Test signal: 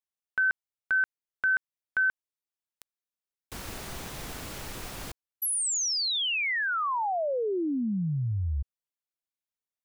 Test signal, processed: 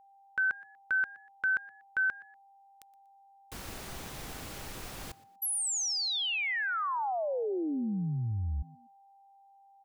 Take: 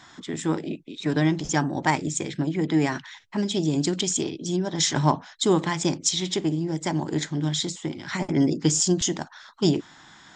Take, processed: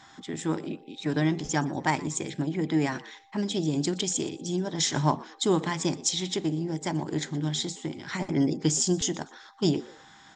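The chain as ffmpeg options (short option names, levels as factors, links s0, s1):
-filter_complex "[0:a]aeval=exprs='val(0)+0.002*sin(2*PI*790*n/s)':c=same,asplit=3[s0][s1][s2];[s1]adelay=120,afreqshift=85,volume=0.0891[s3];[s2]adelay=240,afreqshift=170,volume=0.0275[s4];[s0][s3][s4]amix=inputs=3:normalize=0,volume=0.668"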